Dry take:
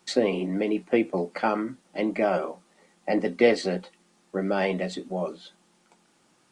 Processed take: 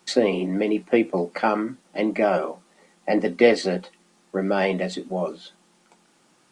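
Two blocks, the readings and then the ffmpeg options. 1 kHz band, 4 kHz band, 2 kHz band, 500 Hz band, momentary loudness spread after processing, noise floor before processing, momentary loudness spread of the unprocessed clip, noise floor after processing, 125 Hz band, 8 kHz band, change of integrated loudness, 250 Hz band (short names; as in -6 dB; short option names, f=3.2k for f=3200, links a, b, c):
+3.5 dB, +3.5 dB, +3.5 dB, +3.5 dB, 13 LU, -65 dBFS, 13 LU, -61 dBFS, +2.5 dB, +3.5 dB, +3.5 dB, +3.0 dB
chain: -af "equalizer=f=62:w=2:g=-14.5,volume=3.5dB"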